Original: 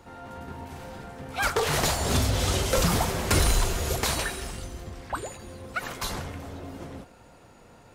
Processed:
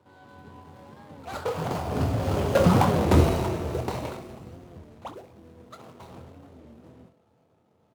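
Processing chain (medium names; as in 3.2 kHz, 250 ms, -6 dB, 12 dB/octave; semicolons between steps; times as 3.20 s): median filter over 25 samples; Doppler pass-by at 2.94 s, 24 m/s, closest 11 m; high-pass 84 Hz 24 dB/octave; on a send: early reflections 24 ms -9.5 dB, 66 ms -13 dB; on the sum: warped record 33 1/3 rpm, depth 160 cents; trim +8 dB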